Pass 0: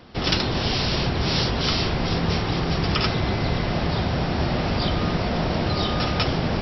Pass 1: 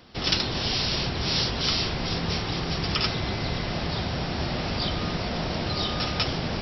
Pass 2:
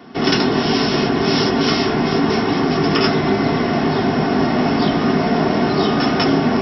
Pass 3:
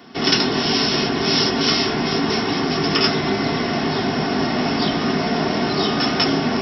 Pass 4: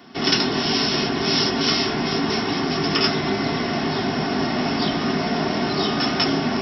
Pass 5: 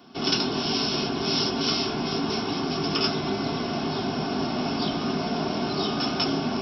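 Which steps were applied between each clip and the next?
treble shelf 3 kHz +9 dB; trim -6 dB
reverberation RT60 0.20 s, pre-delay 3 ms, DRR 0 dB; trim -1 dB
treble shelf 2.6 kHz +10.5 dB; trim -4.5 dB
band-stop 470 Hz, Q 12; trim -2 dB
peaking EQ 1.9 kHz -15 dB 0.25 oct; trim -4.5 dB

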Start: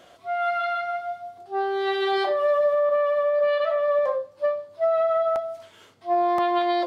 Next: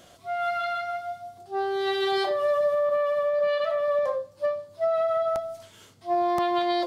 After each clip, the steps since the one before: tone controls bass +10 dB, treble +10 dB; trim -3 dB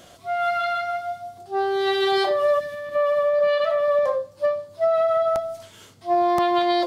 time-frequency box 2.59–2.95 s, 360–1700 Hz -14 dB; trim +4.5 dB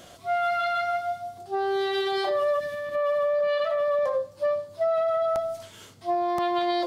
peak limiter -19 dBFS, peak gain reduction 8 dB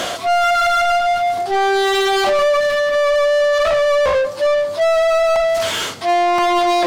reverse; upward compressor, threshold -27 dBFS; reverse; overdrive pedal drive 24 dB, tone 4 kHz, clips at -18.5 dBFS; trim +8 dB

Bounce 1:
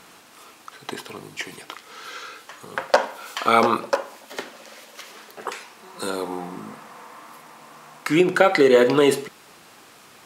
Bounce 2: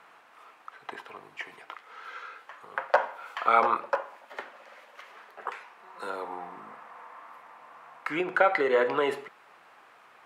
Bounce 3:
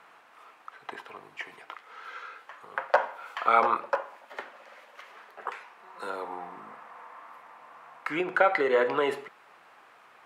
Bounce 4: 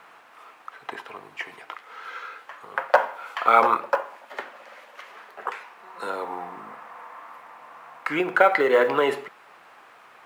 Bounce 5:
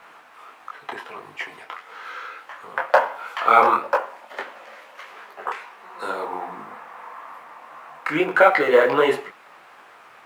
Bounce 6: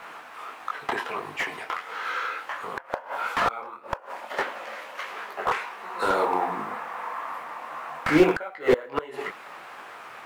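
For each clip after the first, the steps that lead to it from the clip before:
three-band isolator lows -16 dB, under 550 Hz, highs -20 dB, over 2.4 kHz; trim -2.5 dB
no audible change
companded quantiser 8-bit; trim +5 dB
detune thickener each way 53 cents; trim +6.5 dB
inverted gate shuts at -9 dBFS, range -28 dB; slew-rate limiter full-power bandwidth 70 Hz; trim +5.5 dB

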